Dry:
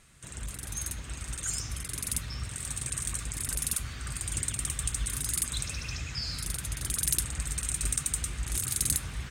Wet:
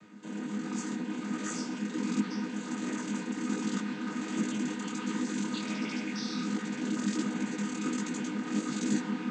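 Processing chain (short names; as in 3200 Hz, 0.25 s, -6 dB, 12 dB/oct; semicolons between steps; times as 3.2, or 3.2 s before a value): chord vocoder minor triad, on G#3; tilt -2 dB/oct; notch 630 Hz, Q 12; detuned doubles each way 47 cents; gain +7 dB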